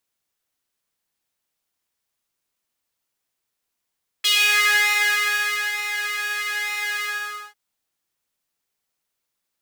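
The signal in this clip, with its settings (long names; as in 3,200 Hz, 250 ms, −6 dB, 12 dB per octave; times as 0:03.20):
subtractive patch with pulse-width modulation G#4, sub −21 dB, noise −17.5 dB, filter highpass, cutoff 1,200 Hz, Q 3.4, filter envelope 1.5 octaves, filter decay 0.36 s, attack 12 ms, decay 1.48 s, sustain −10.5 dB, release 0.52 s, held 2.78 s, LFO 1.1 Hz, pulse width 43%, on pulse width 17%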